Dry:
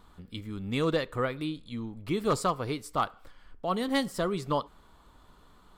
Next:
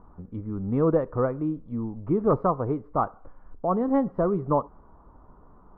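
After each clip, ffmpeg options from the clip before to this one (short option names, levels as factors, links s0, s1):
-af "lowpass=f=1100:w=0.5412,lowpass=f=1100:w=1.3066,volume=2"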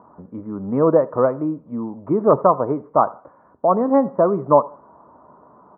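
-af "highpass=f=110:w=0.5412,highpass=f=110:w=1.3066,equalizer=f=110:t=q:w=4:g=-9,equalizer=f=170:t=q:w=4:g=-4,equalizer=f=610:t=q:w=4:g=8,equalizer=f=980:t=q:w=4:g=6,lowpass=f=2100:w=0.5412,lowpass=f=2100:w=1.3066,aecho=1:1:82|164:0.0708|0.0262,volume=1.78"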